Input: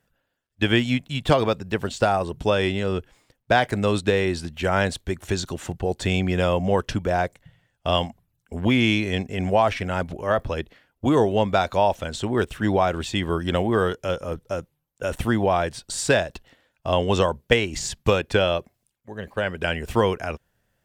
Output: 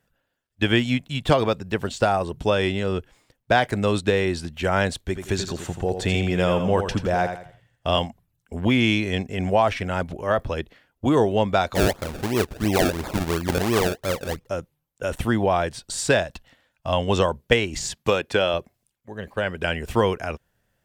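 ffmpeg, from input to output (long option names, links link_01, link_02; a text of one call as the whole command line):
ffmpeg -i in.wav -filter_complex "[0:a]asettb=1/sr,asplit=3[link_01][link_02][link_03];[link_01]atrim=end=5.014[link_04];[link_02]atrim=start=5.01:end=7.99,asetpts=PTS-STARTPTS,afade=type=in:duration=0.004:curve=qsin,afade=type=out:start_time=2.976:duration=0.004:curve=qsin,aecho=1:1:84|168|252|336:0.398|0.131|0.0434|0.0143,atrim=end_sample=131418[link_05];[link_03]atrim=start=7.986[link_06];[link_04][link_05]acrossfade=duration=0.004:curve1=hsin:curve2=qsin[link_07];[link_07][link_06]acrossfade=duration=0.004:curve1=qsin:curve2=hsin,asettb=1/sr,asplit=3[link_08][link_09][link_10];[link_08]atrim=end=11.754[link_11];[link_09]atrim=start=11.75:end=14.47,asetpts=PTS-STARTPTS,afade=type=in:duration=0.004:curve=qsin,afade=type=out:start_time=2.716:duration=0.004:curve=qsin,acrusher=samples=30:mix=1:aa=0.000001:lfo=1:lforange=30:lforate=2.9[link_12];[link_10]atrim=start=14.466[link_13];[link_11][link_12]acrossfade=duration=0.004:curve1=hsin:curve2=qsin[link_14];[link_14][link_13]acrossfade=duration=0.004:curve1=qsin:curve2=hsin,asettb=1/sr,asplit=3[link_15][link_16][link_17];[link_15]atrim=end=16.244[link_18];[link_16]atrim=start=16.24:end=17.08,asetpts=PTS-STARTPTS,afade=type=in:duration=0.004:curve=qsin,afade=type=out:start_time=0.836:duration=0.004:curve=qsin,equalizer=frequency=390:width=3.5:gain=-12.5[link_19];[link_17]atrim=start=17.076[link_20];[link_18][link_19]acrossfade=duration=0.004:curve1=hsin:curve2=qsin[link_21];[link_21][link_20]acrossfade=duration=0.004:curve1=qsin:curve2=hsin,asettb=1/sr,asplit=3[link_22][link_23][link_24];[link_22]atrim=end=17.924[link_25];[link_23]atrim=start=17.92:end=18.54,asetpts=PTS-STARTPTS,afade=type=in:duration=0.004:curve=qsin,afade=type=out:start_time=0.616:duration=0.004:curve=qsin,highpass=frequency=210:poles=1[link_26];[link_24]atrim=start=18.536[link_27];[link_25][link_26]acrossfade=duration=0.004:curve1=hsin:curve2=qsin[link_28];[link_28][link_27]acrossfade=duration=0.004:curve1=qsin:curve2=hsin" out.wav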